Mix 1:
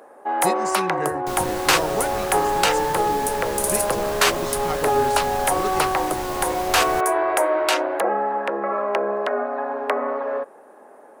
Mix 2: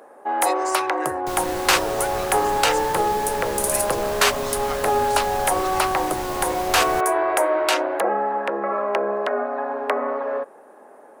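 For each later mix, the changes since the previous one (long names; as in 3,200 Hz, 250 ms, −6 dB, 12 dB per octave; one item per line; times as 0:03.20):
speech: add high-pass filter 1,000 Hz 12 dB per octave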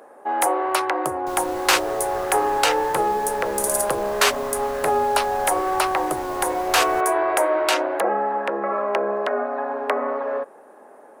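speech: muted
second sound −7.5 dB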